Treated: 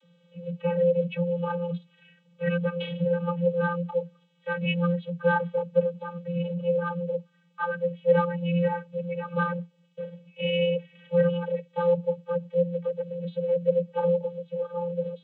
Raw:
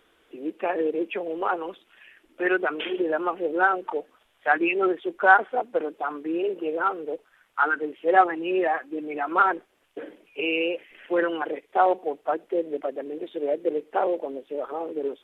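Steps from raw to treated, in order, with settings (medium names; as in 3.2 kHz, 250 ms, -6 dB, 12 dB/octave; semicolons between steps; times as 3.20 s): high-order bell 1 kHz -11.5 dB 2.3 oct; vocoder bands 32, square 173 Hz; bass shelf 390 Hz +7 dB; trim +2.5 dB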